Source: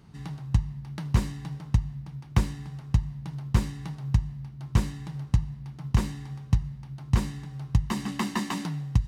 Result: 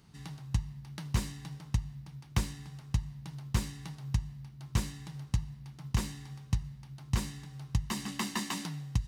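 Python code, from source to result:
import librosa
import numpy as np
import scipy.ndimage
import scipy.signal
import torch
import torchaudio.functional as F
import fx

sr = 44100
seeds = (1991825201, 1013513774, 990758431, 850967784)

y = fx.high_shelf(x, sr, hz=2300.0, db=10.0)
y = F.gain(torch.from_numpy(y), -7.5).numpy()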